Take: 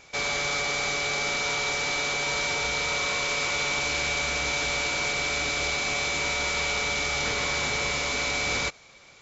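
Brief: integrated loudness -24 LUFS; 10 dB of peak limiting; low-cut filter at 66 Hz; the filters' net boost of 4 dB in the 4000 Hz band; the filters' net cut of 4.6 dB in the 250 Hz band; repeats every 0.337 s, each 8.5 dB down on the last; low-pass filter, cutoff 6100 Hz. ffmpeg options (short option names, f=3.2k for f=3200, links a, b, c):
-af "highpass=66,lowpass=6.1k,equalizer=f=250:t=o:g=-6.5,equalizer=f=4k:t=o:g=5.5,alimiter=limit=-23.5dB:level=0:latency=1,aecho=1:1:337|674|1011|1348:0.376|0.143|0.0543|0.0206,volume=4.5dB"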